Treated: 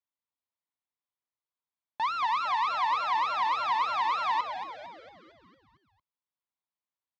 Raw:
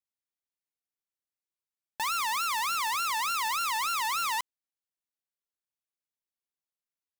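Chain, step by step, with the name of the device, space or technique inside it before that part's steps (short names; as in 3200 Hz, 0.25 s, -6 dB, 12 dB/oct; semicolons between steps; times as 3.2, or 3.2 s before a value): frequency-shifting delay pedal into a guitar cabinet (frequency-shifting echo 0.227 s, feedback 55%, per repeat -140 Hz, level -8.5 dB; speaker cabinet 77–3700 Hz, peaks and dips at 180 Hz -4 dB, 420 Hz -8 dB, 1000 Hz +7 dB, 1600 Hz -5 dB, 2700 Hz -7 dB)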